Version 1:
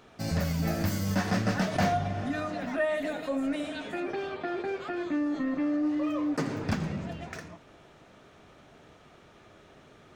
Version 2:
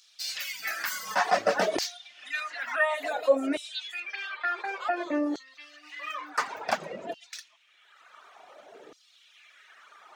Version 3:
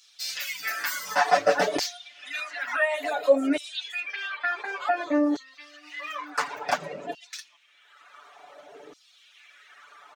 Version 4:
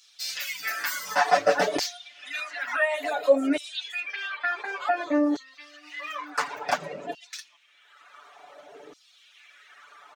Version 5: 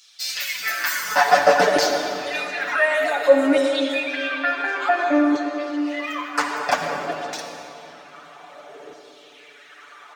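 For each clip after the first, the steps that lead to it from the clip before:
reverb reduction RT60 1.6 s; auto-filter high-pass saw down 0.56 Hz 360–5,100 Hz; level +5.5 dB
comb filter 6.9 ms, depth 87%
no processing that can be heard
convolution reverb RT60 3.4 s, pre-delay 51 ms, DRR 3 dB; level +5 dB

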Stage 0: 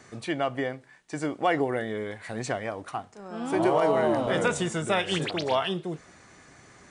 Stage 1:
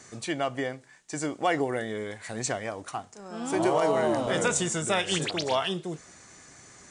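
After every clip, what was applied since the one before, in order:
parametric band 7,100 Hz +11 dB 1.2 octaves
level −1.5 dB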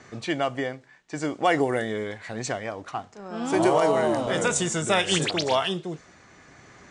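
amplitude tremolo 0.58 Hz, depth 30%
low-pass that shuts in the quiet parts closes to 3,000 Hz, open at −22.5 dBFS
level +4.5 dB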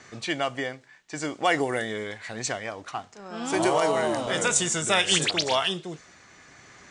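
tilt shelving filter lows −4 dB, about 1,300 Hz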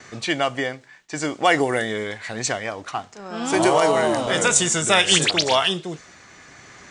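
noise gate with hold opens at −46 dBFS
level +5.5 dB

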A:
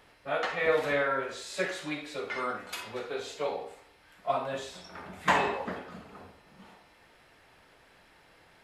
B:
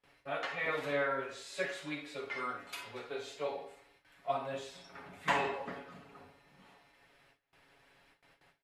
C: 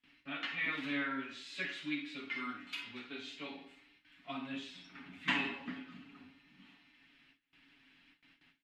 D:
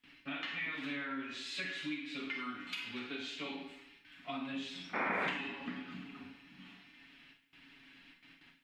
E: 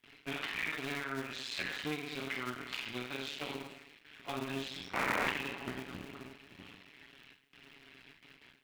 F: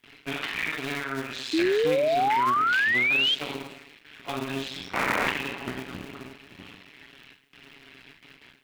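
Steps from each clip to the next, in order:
parametric band 2,500 Hz +3 dB 0.72 octaves; comb filter 7.2 ms, depth 60%; noise gate with hold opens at −47 dBFS; level −8 dB
drawn EQ curve 140 Hz 0 dB, 270 Hz +14 dB, 480 Hz −13 dB, 2,900 Hz +11 dB, 9,900 Hz −8 dB; level −5.5 dB
downward compressor 5 to 1, threshold −44 dBFS, peak gain reduction 14.5 dB; sound drawn into the spectrogram noise, 0:04.93–0:05.28, 200–2,500 Hz −41 dBFS; four-comb reverb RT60 0.49 s, combs from 33 ms, DRR 6.5 dB; level +5.5 dB
sub-harmonics by changed cycles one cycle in 2, muted; level +4.5 dB
sound drawn into the spectrogram rise, 0:01.53–0:03.35, 310–3,300 Hz −30 dBFS; level +7 dB

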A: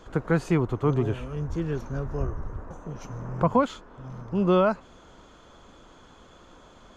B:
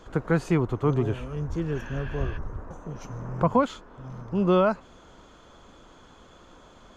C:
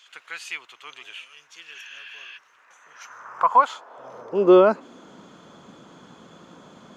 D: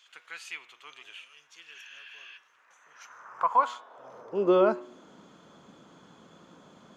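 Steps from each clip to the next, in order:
healed spectral selection 0:01.77–0:02.35, 1,400–5,400 Hz before
high-pass filter sweep 2,700 Hz → 170 Hz, 0:02.52–0:05.31; level +3 dB
hum removal 121.3 Hz, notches 32; level −6.5 dB

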